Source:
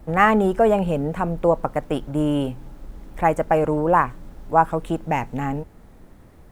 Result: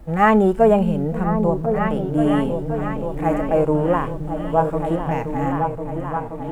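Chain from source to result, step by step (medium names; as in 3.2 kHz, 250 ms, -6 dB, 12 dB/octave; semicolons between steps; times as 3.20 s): delay with an opening low-pass 526 ms, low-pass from 200 Hz, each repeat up 2 oct, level -3 dB; harmonic-percussive split percussive -16 dB; trim +3.5 dB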